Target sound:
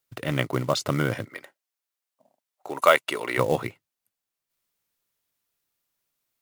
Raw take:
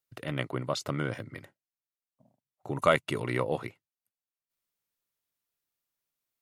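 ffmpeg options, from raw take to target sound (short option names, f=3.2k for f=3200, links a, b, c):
-filter_complex "[0:a]asplit=3[a][b][c];[a]afade=t=out:st=1.24:d=0.02[d];[b]highpass=480,afade=t=in:st=1.24:d=0.02,afade=t=out:st=3.37:d=0.02[e];[c]afade=t=in:st=3.37:d=0.02[f];[d][e][f]amix=inputs=3:normalize=0,acrusher=bits=5:mode=log:mix=0:aa=0.000001,volume=7dB"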